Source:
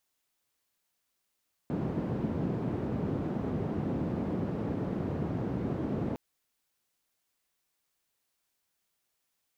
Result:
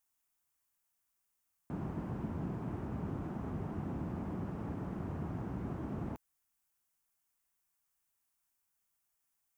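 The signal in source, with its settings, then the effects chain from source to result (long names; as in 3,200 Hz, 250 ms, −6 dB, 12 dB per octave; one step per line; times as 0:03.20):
band-limited noise 110–260 Hz, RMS −32.5 dBFS 4.46 s
graphic EQ with 10 bands 125 Hz −5 dB, 250 Hz −5 dB, 500 Hz −11 dB, 2,000 Hz −4 dB, 4,000 Hz −11 dB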